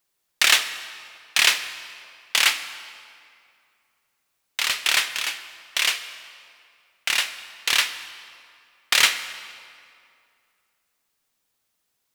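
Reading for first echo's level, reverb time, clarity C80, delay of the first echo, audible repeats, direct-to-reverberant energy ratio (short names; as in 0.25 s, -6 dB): none, 2.4 s, 12.0 dB, none, none, 10.0 dB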